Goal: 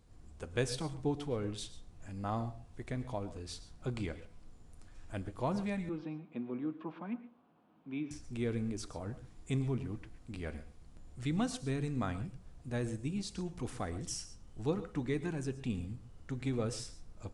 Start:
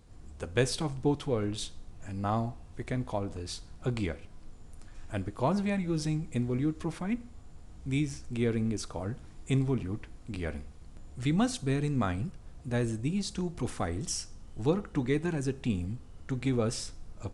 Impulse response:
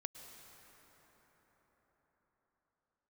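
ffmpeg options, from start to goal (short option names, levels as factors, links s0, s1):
-filter_complex "[0:a]asettb=1/sr,asplit=3[s0][s1][s2];[s0]atrim=end=5.894[s3];[s1]atrim=start=5.89:end=8.11,asetpts=PTS-STARTPTS,afade=t=in:d=0.004:c=qsin,afade=t=out:st=2.216:d=0.004:c=qsin,highpass=f=200:w=0.5412,highpass=f=200:w=1.3066,equalizer=f=430:t=q:w=4:g=-4,equalizer=f=1000:t=q:w=4:g=4,equalizer=f=2000:t=q:w=4:g=-9,lowpass=f=2800:w=0.5412,lowpass=f=2800:w=1.3066[s4];[s2]atrim=start=8.106[s5];[s3][s4]acrossfade=d=0.004:c1=hsin:c2=qsin[s6];[s6][s5]acrossfade=d=0.004:c1=qsin:c2=hsin[s7];[1:a]atrim=start_sample=2205,afade=t=out:st=0.19:d=0.01,atrim=end_sample=8820[s8];[s7][s8]afir=irnorm=-1:irlink=0,volume=0.794"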